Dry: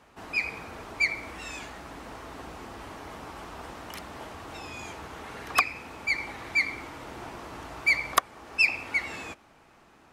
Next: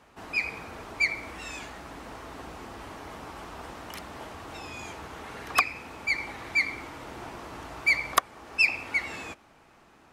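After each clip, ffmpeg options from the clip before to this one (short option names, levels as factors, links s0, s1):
-af anull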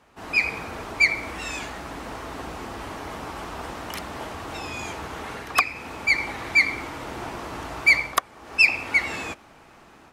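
-af "dynaudnorm=f=140:g=3:m=2.51,volume=0.891"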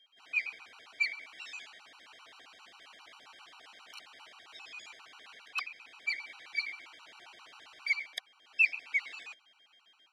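-af "aeval=exprs='val(0)+0.00178*sin(2*PI*3200*n/s)':c=same,bandpass=f=3300:t=q:w=1.4:csg=0,afftfilt=real='re*gt(sin(2*PI*7.5*pts/sr)*(1-2*mod(floor(b*sr/1024/770),2)),0)':imag='im*gt(sin(2*PI*7.5*pts/sr)*(1-2*mod(floor(b*sr/1024/770),2)),0)':win_size=1024:overlap=0.75,volume=0.501"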